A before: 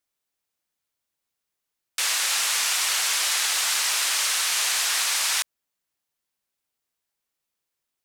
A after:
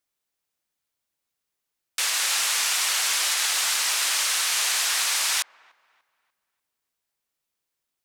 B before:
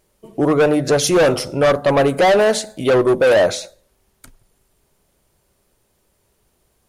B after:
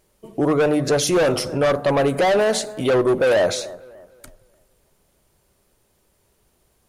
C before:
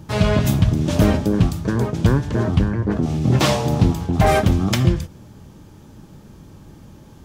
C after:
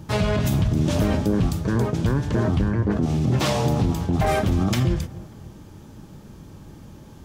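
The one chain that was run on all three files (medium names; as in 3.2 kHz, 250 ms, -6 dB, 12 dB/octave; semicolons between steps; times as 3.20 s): feedback echo behind a low-pass 294 ms, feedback 34%, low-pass 1.6 kHz, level -22 dB; peak limiter -12.5 dBFS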